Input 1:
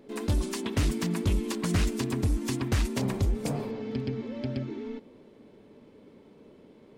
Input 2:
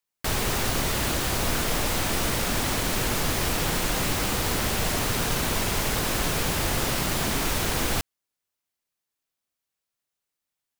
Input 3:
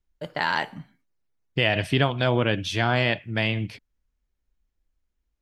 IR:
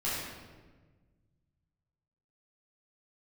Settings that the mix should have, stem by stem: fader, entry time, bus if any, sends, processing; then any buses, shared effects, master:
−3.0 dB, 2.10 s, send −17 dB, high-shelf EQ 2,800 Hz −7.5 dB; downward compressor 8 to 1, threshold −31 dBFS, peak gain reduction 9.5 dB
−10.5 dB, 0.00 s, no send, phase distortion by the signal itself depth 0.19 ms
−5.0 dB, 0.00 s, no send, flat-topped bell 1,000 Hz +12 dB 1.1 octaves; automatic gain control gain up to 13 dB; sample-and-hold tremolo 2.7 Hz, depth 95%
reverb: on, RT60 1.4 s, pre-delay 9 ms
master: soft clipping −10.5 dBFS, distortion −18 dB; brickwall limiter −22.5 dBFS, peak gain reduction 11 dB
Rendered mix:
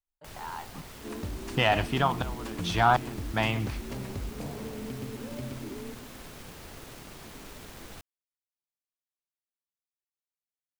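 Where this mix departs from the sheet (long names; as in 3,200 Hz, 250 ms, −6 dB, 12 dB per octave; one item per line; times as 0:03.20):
stem 1: entry 2.10 s → 0.95 s
stem 2 −10.5 dB → −19.0 dB
master: missing brickwall limiter −22.5 dBFS, peak gain reduction 11 dB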